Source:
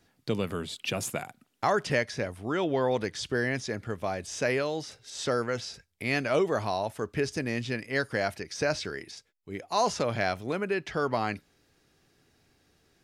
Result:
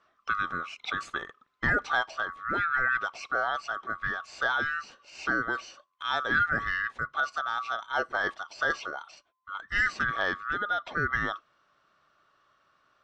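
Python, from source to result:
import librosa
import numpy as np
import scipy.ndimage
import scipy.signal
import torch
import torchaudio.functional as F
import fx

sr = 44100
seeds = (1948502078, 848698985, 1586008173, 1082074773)

y = fx.band_swap(x, sr, width_hz=1000)
y = scipy.signal.sosfilt(scipy.signal.butter(4, 6900.0, 'lowpass', fs=sr, output='sos'), y)
y = fx.bass_treble(y, sr, bass_db=0, treble_db=-12)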